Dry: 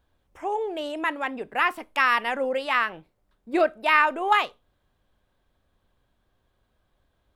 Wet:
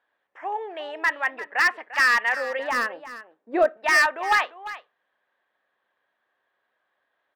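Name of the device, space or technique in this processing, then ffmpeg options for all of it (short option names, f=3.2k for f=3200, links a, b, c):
megaphone: -filter_complex "[0:a]highpass=630,lowpass=2.7k,equalizer=f=1.8k:t=o:w=0.27:g=11,asoftclip=type=hard:threshold=-15.5dB,asettb=1/sr,asplit=3[a][b][c];[a]atrim=end=2.594[d];[b]atrim=start=2.59:end=3.77,asetpts=PTS-STARTPTS,afade=t=in:d=0.004:c=qsin,afade=t=out:st=1.176:d=0.004:c=qsin,equalizer=f=125:t=o:w=1:g=-3,equalizer=f=250:t=o:w=1:g=10,equalizer=f=500:t=o:w=1:g=6,equalizer=f=2k:t=o:w=1:g=-7,equalizer=f=4k:t=o:w=1:g=-4[e];[c]atrim=start=3.766[f];[d][e]acrossfade=d=0.004:c1=hsin:c2=qsin[g];[g][f]acrossfade=d=0.004:c1=qsin:c2=hsin,aecho=1:1:347:0.188,volume=1dB"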